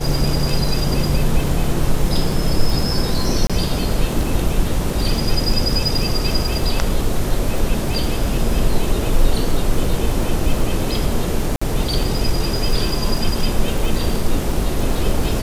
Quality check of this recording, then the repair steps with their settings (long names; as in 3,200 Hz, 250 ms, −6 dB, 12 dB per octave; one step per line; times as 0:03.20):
surface crackle 40 per second −21 dBFS
0:03.47–0:03.50: drop-out 26 ms
0:11.56–0:11.62: drop-out 55 ms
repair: click removal
repair the gap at 0:03.47, 26 ms
repair the gap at 0:11.56, 55 ms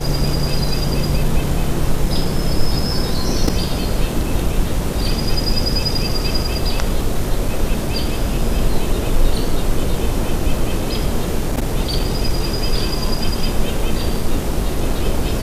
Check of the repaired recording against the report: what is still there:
none of them is left